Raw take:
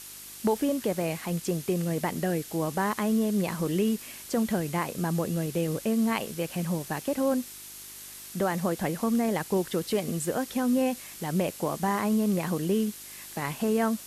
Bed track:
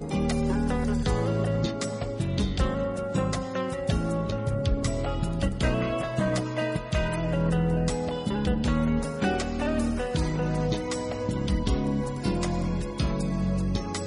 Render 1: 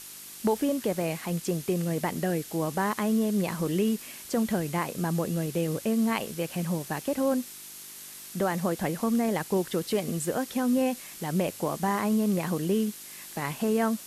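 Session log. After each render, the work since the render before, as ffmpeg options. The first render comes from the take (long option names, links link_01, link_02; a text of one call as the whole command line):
ffmpeg -i in.wav -af "bandreject=frequency=50:width_type=h:width=4,bandreject=frequency=100:width_type=h:width=4" out.wav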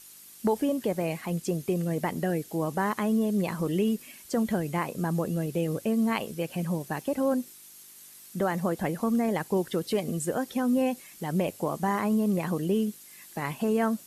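ffmpeg -i in.wav -af "afftdn=noise_reduction=9:noise_floor=-44" out.wav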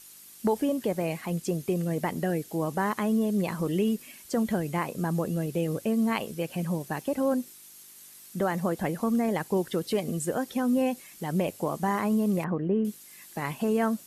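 ffmpeg -i in.wav -filter_complex "[0:a]asettb=1/sr,asplit=3[link_01][link_02][link_03];[link_01]atrim=end=12.444[link_04];[link_02]atrim=start=12.44:end=12.85,asetpts=PTS-STARTPTS,afade=type=in:duration=0.004:curve=qsin,afade=type=out:start_time=0.406:duration=0.004:curve=qsin,lowpass=frequency=2000:width=0.5412,lowpass=frequency=2000:width=1.3066[link_05];[link_03]atrim=start=12.846[link_06];[link_04][link_05]acrossfade=duration=0.004:curve1=hsin:curve2=qsin[link_07];[link_07][link_06]acrossfade=duration=0.004:curve1=qsin:curve2=hsin" out.wav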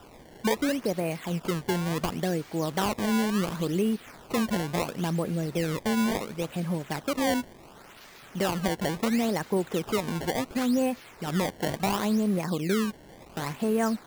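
ffmpeg -i in.wav -af "acrusher=samples=20:mix=1:aa=0.000001:lfo=1:lforange=32:lforate=0.71" out.wav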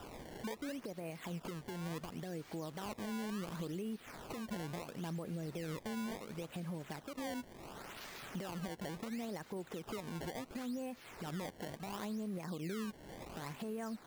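ffmpeg -i in.wav -af "acompressor=threshold=-35dB:ratio=3,alimiter=level_in=10.5dB:limit=-24dB:level=0:latency=1:release=417,volume=-10.5dB" out.wav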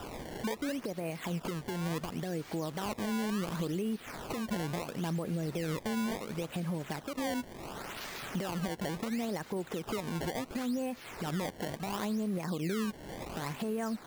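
ffmpeg -i in.wav -af "volume=7.5dB" out.wav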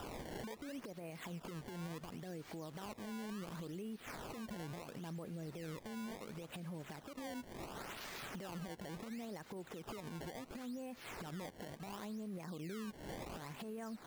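ffmpeg -i in.wav -af "acompressor=threshold=-36dB:ratio=6,alimiter=level_in=15dB:limit=-24dB:level=0:latency=1:release=400,volume=-15dB" out.wav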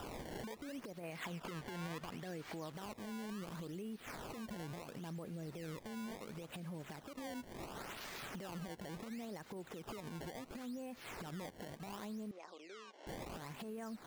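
ffmpeg -i in.wav -filter_complex "[0:a]asettb=1/sr,asplit=3[link_01][link_02][link_03];[link_01]atrim=end=1.034[link_04];[link_02]atrim=start=1.03:end=2.72,asetpts=PTS-STARTPTS,afade=type=in:duration=0.004:curve=qsin,afade=type=out:start_time=1.686:duration=0.004:curve=qsin,equalizer=frequency=1800:width=0.44:gain=6[link_05];[link_03]atrim=start=2.716[link_06];[link_04][link_05]acrossfade=duration=0.004:curve1=hsin:curve2=qsin[link_07];[link_07][link_06]acrossfade=duration=0.004:curve1=qsin:curve2=hsin,asettb=1/sr,asplit=3[link_08][link_09][link_10];[link_08]atrim=end=12.314[link_11];[link_09]atrim=start=12.31:end=13.07,asetpts=PTS-STARTPTS,afade=type=in:duration=0.004:curve=qsin,afade=type=out:start_time=0.756:duration=0.004:curve=qsin,highpass=frequency=410:width=0.5412,highpass=frequency=410:width=1.3066,equalizer=frequency=450:width_type=q:width=4:gain=-4,equalizer=frequency=1700:width_type=q:width=4:gain=-6,equalizer=frequency=4400:width_type=q:width=4:gain=-4,lowpass=frequency=6200:width=0.5412,lowpass=frequency=6200:width=1.3066[link_12];[link_10]atrim=start=13.066[link_13];[link_11][link_12]acrossfade=duration=0.004:curve1=hsin:curve2=qsin[link_14];[link_14][link_13]acrossfade=duration=0.004:curve1=qsin:curve2=hsin" out.wav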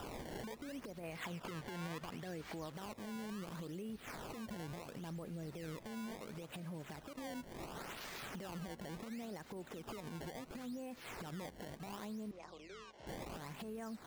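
ffmpeg -i in.wav -i bed.wav -filter_complex "[1:a]volume=-38dB[link_01];[0:a][link_01]amix=inputs=2:normalize=0" out.wav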